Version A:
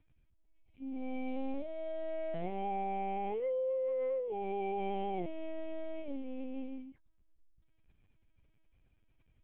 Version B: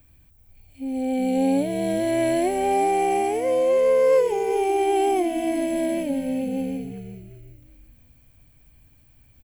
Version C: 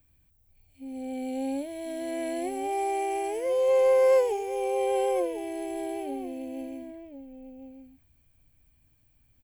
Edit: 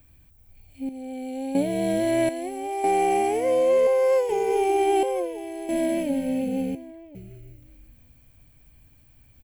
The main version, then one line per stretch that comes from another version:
B
0:00.89–0:01.55: punch in from C
0:02.29–0:02.84: punch in from C
0:03.87–0:04.29: punch in from C
0:05.03–0:05.69: punch in from C
0:06.75–0:07.15: punch in from C
not used: A

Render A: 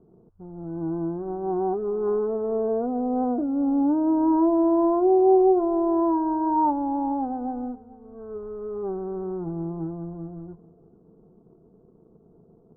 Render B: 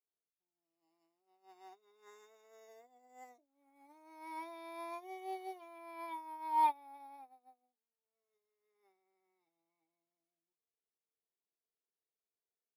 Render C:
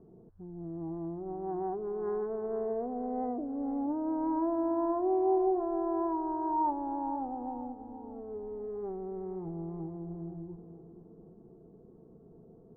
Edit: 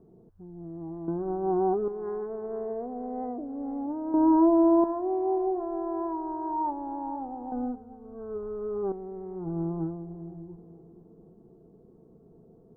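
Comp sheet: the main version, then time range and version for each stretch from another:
C
0:01.08–0:01.88: punch in from A
0:04.14–0:04.84: punch in from A
0:07.52–0:08.92: punch in from A
0:09.45–0:09.95: punch in from A, crossfade 0.24 s
not used: B

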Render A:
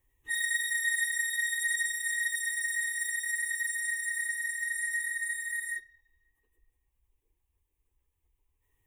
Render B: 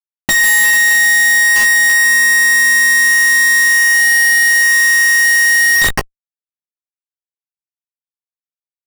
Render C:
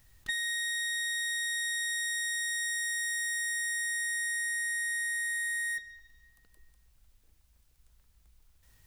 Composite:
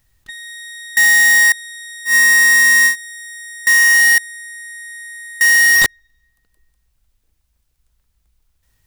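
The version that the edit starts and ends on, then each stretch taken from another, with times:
C
0:00.97–0:01.52: punch in from B
0:02.10–0:02.91: punch in from B, crossfade 0.10 s
0:03.67–0:04.18: punch in from B
0:05.41–0:05.86: punch in from B
not used: A

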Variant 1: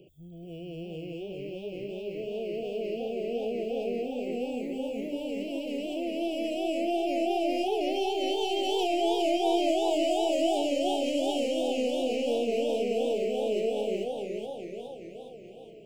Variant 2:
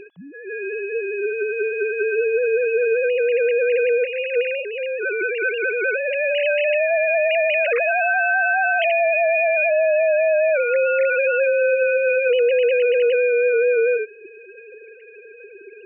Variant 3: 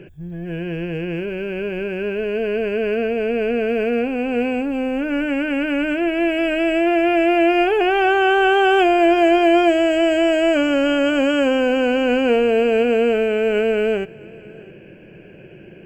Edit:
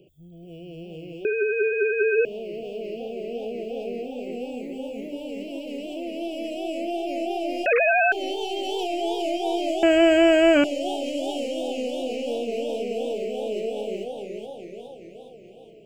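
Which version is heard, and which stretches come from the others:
1
0:01.25–0:02.25: punch in from 2
0:07.66–0:08.12: punch in from 2
0:09.83–0:10.64: punch in from 3

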